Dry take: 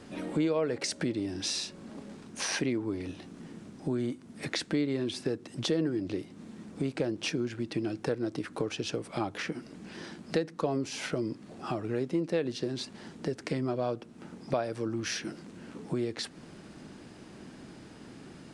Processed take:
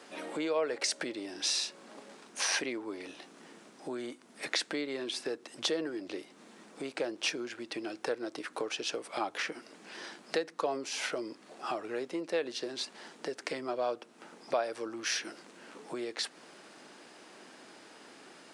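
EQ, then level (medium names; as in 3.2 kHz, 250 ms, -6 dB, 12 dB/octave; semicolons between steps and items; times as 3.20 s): high-pass 530 Hz 12 dB/octave; +2.0 dB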